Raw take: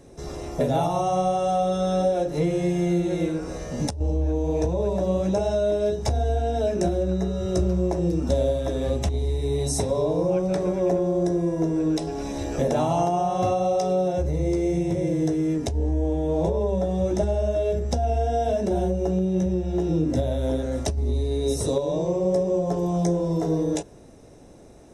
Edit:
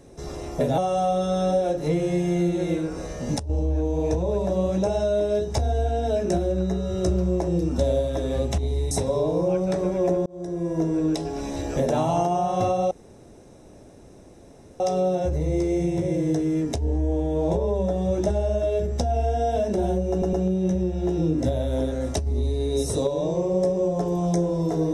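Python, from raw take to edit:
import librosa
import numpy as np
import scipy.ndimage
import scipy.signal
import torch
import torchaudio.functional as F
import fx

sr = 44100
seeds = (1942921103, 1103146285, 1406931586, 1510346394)

y = fx.edit(x, sr, fx.cut(start_s=0.78, length_s=0.51),
    fx.cut(start_s=9.42, length_s=0.31),
    fx.fade_in_span(start_s=11.08, length_s=0.53),
    fx.insert_room_tone(at_s=13.73, length_s=1.89),
    fx.stutter(start_s=19.04, slice_s=0.11, count=3), tone=tone)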